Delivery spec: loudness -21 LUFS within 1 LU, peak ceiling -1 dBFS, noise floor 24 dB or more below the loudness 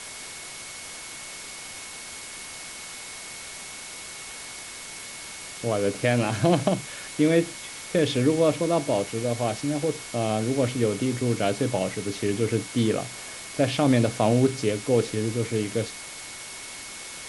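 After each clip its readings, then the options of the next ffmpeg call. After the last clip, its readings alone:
steady tone 2200 Hz; tone level -45 dBFS; noise floor -39 dBFS; noise floor target -51 dBFS; loudness -27.0 LUFS; peak -6.0 dBFS; loudness target -21.0 LUFS
-> -af "bandreject=f=2.2k:w=30"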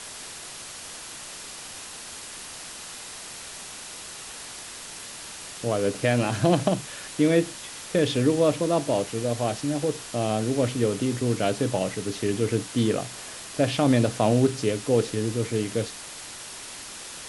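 steady tone none; noise floor -40 dBFS; noise floor target -51 dBFS
-> -af "afftdn=nr=11:nf=-40"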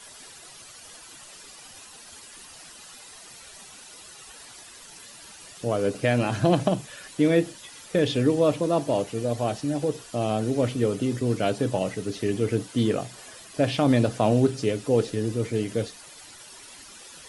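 noise floor -47 dBFS; noise floor target -49 dBFS
-> -af "afftdn=nr=6:nf=-47"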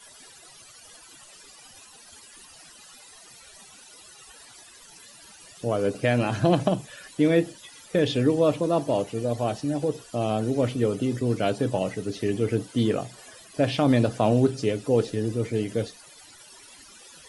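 noise floor -50 dBFS; loudness -25.0 LUFS; peak -6.5 dBFS; loudness target -21.0 LUFS
-> -af "volume=4dB"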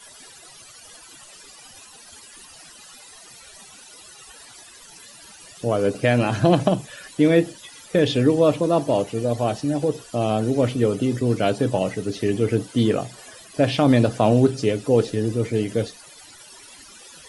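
loudness -21.0 LUFS; peak -2.5 dBFS; noise floor -46 dBFS

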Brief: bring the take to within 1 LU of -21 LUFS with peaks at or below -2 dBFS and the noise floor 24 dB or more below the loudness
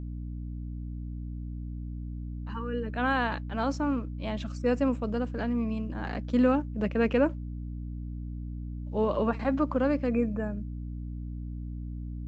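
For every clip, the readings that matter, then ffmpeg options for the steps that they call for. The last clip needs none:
hum 60 Hz; harmonics up to 300 Hz; hum level -34 dBFS; loudness -31.0 LUFS; peak -12.5 dBFS; loudness target -21.0 LUFS
-> -af "bandreject=f=60:t=h:w=4,bandreject=f=120:t=h:w=4,bandreject=f=180:t=h:w=4,bandreject=f=240:t=h:w=4,bandreject=f=300:t=h:w=4"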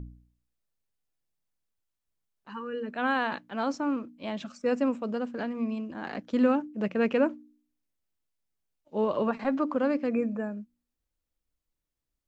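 hum none; loudness -29.5 LUFS; peak -12.5 dBFS; loudness target -21.0 LUFS
-> -af "volume=8.5dB"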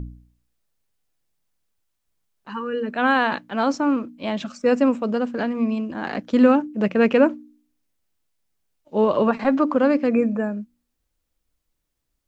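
loudness -21.0 LUFS; peak -4.0 dBFS; noise floor -77 dBFS

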